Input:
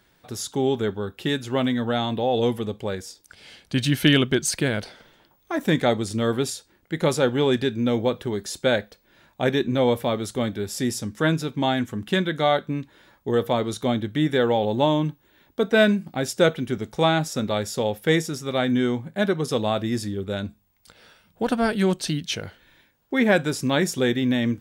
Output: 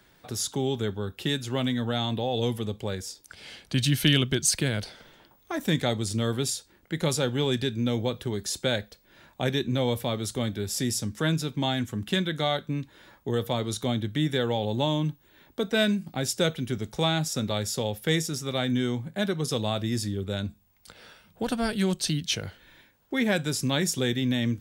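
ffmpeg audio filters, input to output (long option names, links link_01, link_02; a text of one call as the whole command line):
ffmpeg -i in.wav -filter_complex "[0:a]acrossover=split=150|3000[link_01][link_02][link_03];[link_02]acompressor=threshold=-44dB:ratio=1.5[link_04];[link_01][link_04][link_03]amix=inputs=3:normalize=0,volume=2dB" out.wav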